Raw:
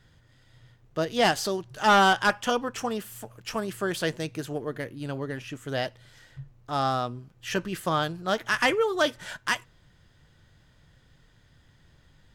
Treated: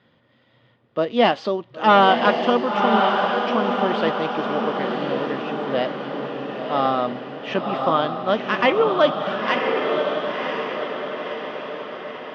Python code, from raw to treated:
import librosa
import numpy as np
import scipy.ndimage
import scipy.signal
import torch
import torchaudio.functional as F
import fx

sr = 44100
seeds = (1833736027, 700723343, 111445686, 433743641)

y = fx.cabinet(x, sr, low_hz=220.0, low_slope=12, high_hz=3500.0, hz=(230.0, 550.0, 1100.0, 1600.0), db=(8, 6, 4, -6))
y = fx.echo_diffused(y, sr, ms=1041, feedback_pct=55, wet_db=-3.0)
y = F.gain(torch.from_numpy(y), 4.0).numpy()